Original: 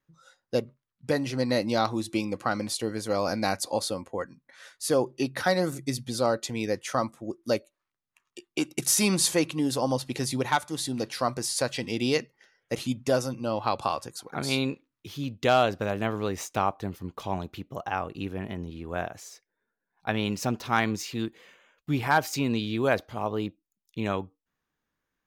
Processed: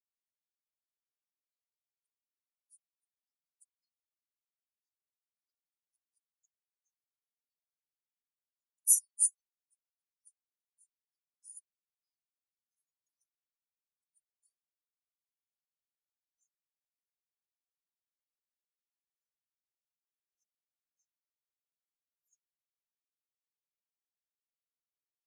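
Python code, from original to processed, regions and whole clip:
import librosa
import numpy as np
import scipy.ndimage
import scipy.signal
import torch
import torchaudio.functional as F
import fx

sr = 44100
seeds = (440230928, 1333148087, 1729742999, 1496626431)

y = fx.chain(x, sr, fx.air_absorb(metres=120.0),
    fx.comb(ms=6.5, depth=0.91), at=(3.78, 5.32))
y = fx.chain(y, sr, fx.high_shelf(hz=11000.0, db=6.5),
    fx.band_squash(depth_pct=100), at=(12.03, 15.09))
y = scipy.signal.sosfilt(scipy.signal.cheby2(4, 70, 1200.0, 'highpass', fs=sr, output='sos'), y)
y = np.diff(y, prepend=0.0)
y = fx.spectral_expand(y, sr, expansion=4.0)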